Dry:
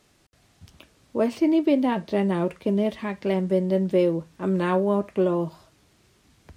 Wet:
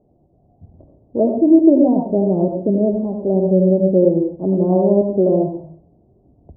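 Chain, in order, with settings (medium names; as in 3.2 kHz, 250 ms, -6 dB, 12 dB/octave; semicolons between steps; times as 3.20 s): elliptic low-pass 720 Hz, stop band 60 dB; on a send: reverberation RT60 0.40 s, pre-delay 70 ms, DRR 2 dB; on the sum: trim +6.5 dB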